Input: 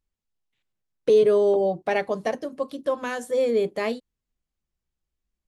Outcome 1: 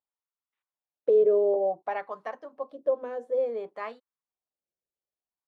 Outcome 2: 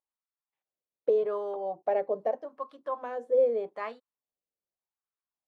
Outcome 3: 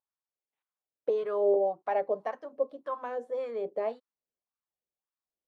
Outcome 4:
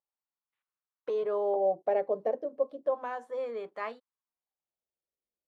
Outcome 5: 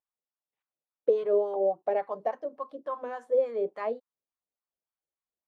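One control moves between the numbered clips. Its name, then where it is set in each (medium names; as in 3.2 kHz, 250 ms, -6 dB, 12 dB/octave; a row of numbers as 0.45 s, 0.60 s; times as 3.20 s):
wah-wah, rate: 0.57 Hz, 0.83 Hz, 1.8 Hz, 0.33 Hz, 3.5 Hz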